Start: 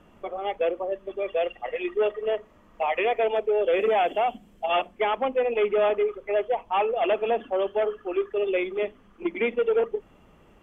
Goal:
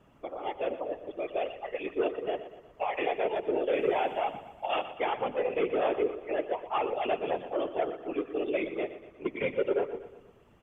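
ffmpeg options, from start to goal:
-af "afftfilt=real='hypot(re,im)*cos(2*PI*random(0))':imag='hypot(re,im)*sin(2*PI*random(1))':win_size=512:overlap=0.75,aecho=1:1:120|240|360|480|600:0.224|0.112|0.056|0.028|0.014"

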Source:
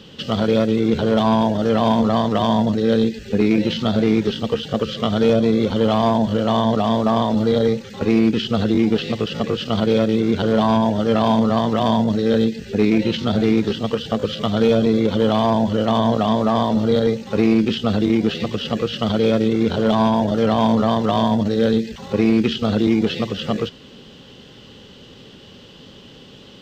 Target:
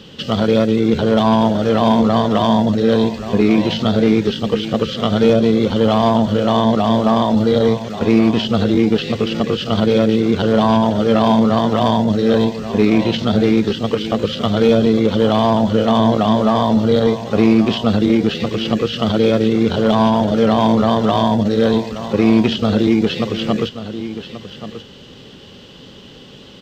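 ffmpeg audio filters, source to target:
-af "aecho=1:1:1132:0.251,volume=1.41"

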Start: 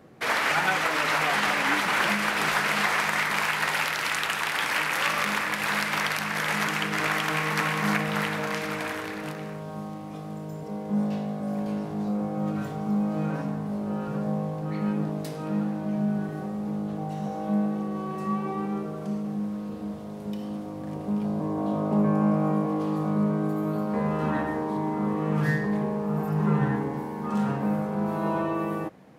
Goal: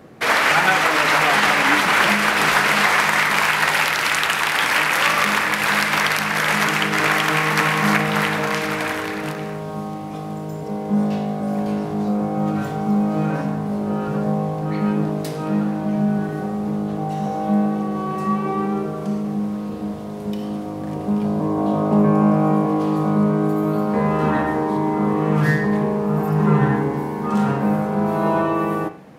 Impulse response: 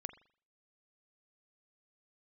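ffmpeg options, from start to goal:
-filter_complex "[0:a]asplit=2[s0][s1];[1:a]atrim=start_sample=2205[s2];[s1][s2]afir=irnorm=-1:irlink=0,volume=4.22[s3];[s0][s3]amix=inputs=2:normalize=0,volume=0.668"

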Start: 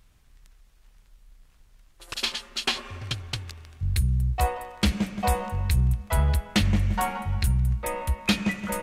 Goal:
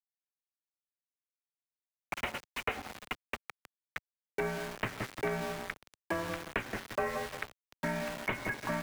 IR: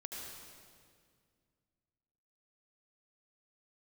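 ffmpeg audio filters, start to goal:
-filter_complex "[0:a]highpass=f=340:t=q:w=0.5412,highpass=f=340:t=q:w=1.307,lowpass=f=2700:t=q:w=0.5176,lowpass=f=2700:t=q:w=0.7071,lowpass=f=2700:t=q:w=1.932,afreqshift=-320,aeval=exprs='val(0)*gte(abs(val(0)),0.0106)':c=same,acrossover=split=110|1000[s0][s1][s2];[s0]acompressor=threshold=0.002:ratio=4[s3];[s1]acompressor=threshold=0.0112:ratio=4[s4];[s2]acompressor=threshold=0.01:ratio=4[s5];[s3][s4][s5]amix=inputs=3:normalize=0,volume=1.58"

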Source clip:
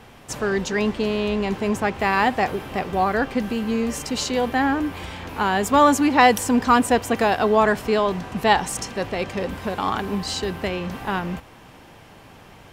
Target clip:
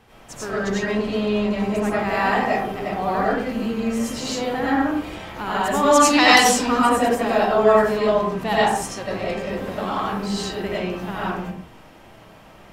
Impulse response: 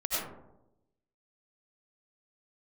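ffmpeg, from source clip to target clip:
-filter_complex "[0:a]asettb=1/sr,asplit=3[s0][s1][s2];[s0]atrim=end=5.914[s3];[s1]atrim=start=5.91:end=6.62,asetpts=PTS-STARTPTS,afade=t=in:d=0.004:c=qsin,afade=t=out:st=0.706:d=0.004:c=qsin,equalizer=f=4600:w=0.58:g=15[s4];[s2]atrim=start=6.616[s5];[s3][s4]acrossfade=d=0.004:c1=hsin:c2=qsin[s6];[s6][s5]acrossfade=d=0.004:c1=qsin:c2=hsin[s7];[1:a]atrim=start_sample=2205,afade=t=out:st=0.34:d=0.01,atrim=end_sample=15435[s8];[s7][s8]afir=irnorm=-1:irlink=0,volume=0.422"

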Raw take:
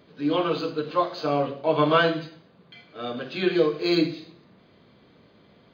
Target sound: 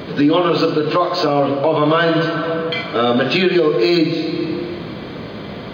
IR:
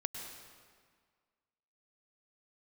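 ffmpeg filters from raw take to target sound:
-filter_complex "[0:a]asplit=2[s0][s1];[1:a]atrim=start_sample=2205,lowpass=4500[s2];[s1][s2]afir=irnorm=-1:irlink=0,volume=0.355[s3];[s0][s3]amix=inputs=2:normalize=0,acompressor=threshold=0.01:ratio=2.5,alimiter=level_in=28.2:limit=0.891:release=50:level=0:latency=1,volume=0.562"

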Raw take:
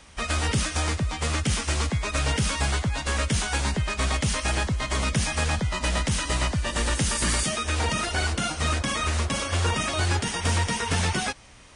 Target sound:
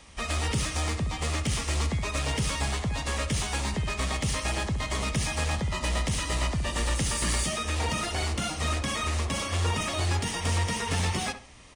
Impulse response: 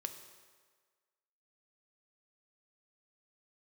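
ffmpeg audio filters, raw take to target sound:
-filter_complex "[0:a]bandreject=f=1500:w=7.5,asplit=2[s0][s1];[s1]asoftclip=type=hard:threshold=0.0282,volume=0.531[s2];[s0][s2]amix=inputs=2:normalize=0,asplit=2[s3][s4];[s4]adelay=67,lowpass=f=1900:p=1,volume=0.335,asplit=2[s5][s6];[s6]adelay=67,lowpass=f=1900:p=1,volume=0.31,asplit=2[s7][s8];[s8]adelay=67,lowpass=f=1900:p=1,volume=0.31[s9];[s3][s5][s7][s9]amix=inputs=4:normalize=0,volume=0.562"

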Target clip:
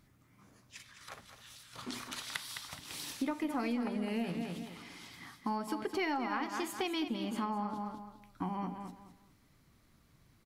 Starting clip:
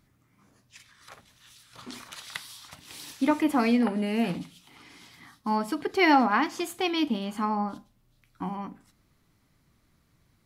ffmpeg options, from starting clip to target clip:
-af "aecho=1:1:210|420|630:0.335|0.0871|0.0226,aeval=exprs='0.355*(cos(1*acos(clip(val(0)/0.355,-1,1)))-cos(1*PI/2))+0.0224*(cos(2*acos(clip(val(0)/0.355,-1,1)))-cos(2*PI/2))':c=same,acompressor=threshold=0.0224:ratio=5"

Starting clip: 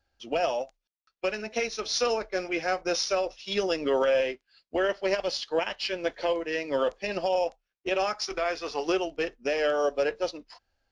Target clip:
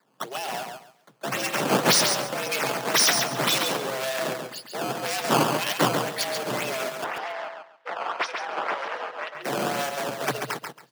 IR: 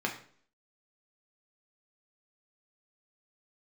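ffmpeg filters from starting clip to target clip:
-filter_complex "[0:a]acompressor=threshold=0.0141:ratio=1.5,alimiter=level_in=1.68:limit=0.0631:level=0:latency=1:release=47,volume=0.596,dynaudnorm=f=450:g=5:m=2.37,volume=37.6,asoftclip=hard,volume=0.0266,crystalizer=i=9:c=0,acrusher=samples=14:mix=1:aa=0.000001:lfo=1:lforange=22.4:lforate=1.9,asoftclip=type=tanh:threshold=0.266,afreqshift=120,asettb=1/sr,asplit=3[s0][s1][s2];[s0]atrim=end=7.044[s3];[s1]atrim=start=7.04:end=9.35,asetpts=PTS-STARTPTS,afade=t=in:d=0.004:c=qsin,afade=t=out:st=2.306:d=0.004:c=qsin,highpass=750,lowpass=2100[s4];[s2]atrim=start=9.346[s5];[s3][s4]acrossfade=d=0.004:c1=hsin:c2=qsin[s6];[s6][s5]acrossfade=d=0.004:c1=qsin:c2=hsin,aecho=1:1:138|276|414:0.531|0.117|0.0257"

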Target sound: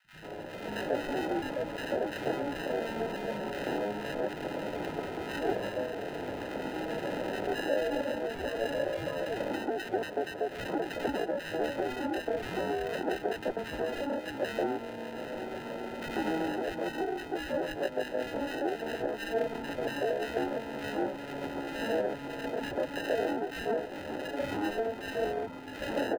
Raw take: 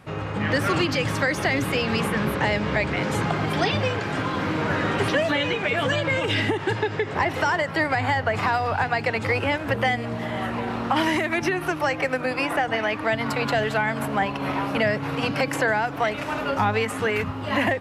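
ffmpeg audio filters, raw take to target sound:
-filter_complex "[0:a]highpass=f=120:w=0.5412,highpass=f=120:w=1.3066,atempo=0.68,acrusher=samples=39:mix=1:aa=0.000001,acrossover=split=250 3100:gain=0.224 1 0.178[s0][s1][s2];[s0][s1][s2]amix=inputs=3:normalize=0,acrossover=split=170|1400[s3][s4][s5];[s3]adelay=40[s6];[s4]adelay=140[s7];[s6][s7][s5]amix=inputs=3:normalize=0,volume=0.501"

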